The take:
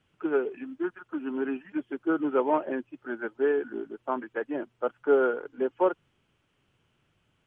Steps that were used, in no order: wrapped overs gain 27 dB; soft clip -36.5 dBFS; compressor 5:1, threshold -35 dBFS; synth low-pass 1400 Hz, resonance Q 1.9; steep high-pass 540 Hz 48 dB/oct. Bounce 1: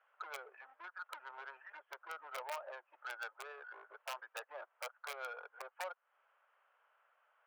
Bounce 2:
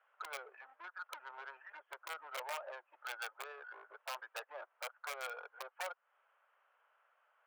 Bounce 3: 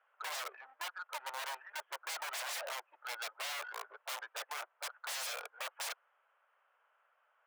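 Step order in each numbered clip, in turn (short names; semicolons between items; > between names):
synth low-pass > compressor > wrapped overs > soft clip > steep high-pass; compressor > synth low-pass > wrapped overs > soft clip > steep high-pass; synth low-pass > wrapped overs > soft clip > steep high-pass > compressor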